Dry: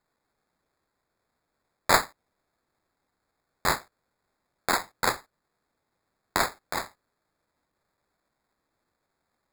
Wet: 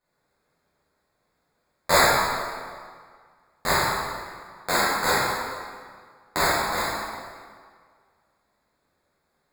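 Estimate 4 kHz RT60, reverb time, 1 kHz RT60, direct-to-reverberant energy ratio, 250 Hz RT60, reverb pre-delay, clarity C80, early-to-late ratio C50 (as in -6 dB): 1.4 s, 1.9 s, 1.9 s, -11.0 dB, 1.8 s, 7 ms, -0.5 dB, -3.0 dB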